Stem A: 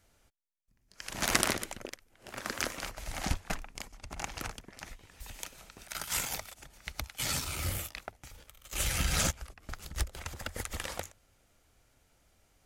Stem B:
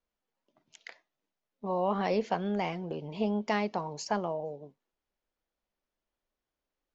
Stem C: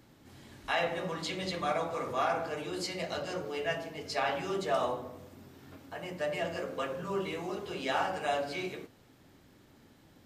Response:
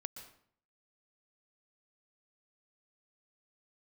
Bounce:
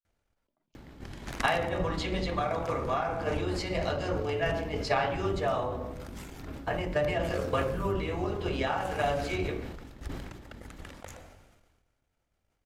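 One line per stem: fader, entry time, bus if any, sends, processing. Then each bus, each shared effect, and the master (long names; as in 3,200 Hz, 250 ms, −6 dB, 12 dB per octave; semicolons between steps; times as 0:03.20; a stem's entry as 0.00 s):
−15.5 dB, 0.05 s, send −7 dB, no processing
−19.5 dB, 0.00 s, no send, no processing
+3.0 dB, 0.75 s, send −8 dB, sub-octave generator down 2 octaves, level +1 dB; downward compressor 6 to 1, threshold −33 dBFS, peak gain reduction 8.5 dB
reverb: on, RT60 0.60 s, pre-delay 114 ms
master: high-shelf EQ 4,400 Hz −11 dB; transient designer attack +8 dB, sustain −3 dB; level that may fall only so fast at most 38 dB per second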